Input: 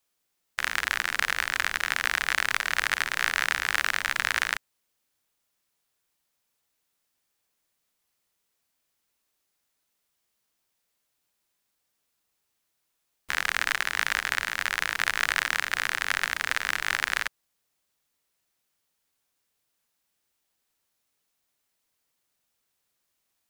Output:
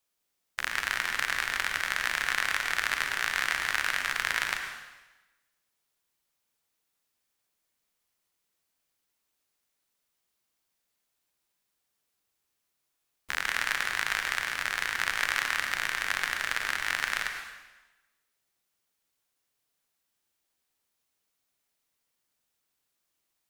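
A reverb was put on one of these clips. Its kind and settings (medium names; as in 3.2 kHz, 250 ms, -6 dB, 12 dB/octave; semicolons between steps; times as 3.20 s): plate-style reverb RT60 1.1 s, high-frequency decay 0.95×, pre-delay 85 ms, DRR 5 dB; trim -3.5 dB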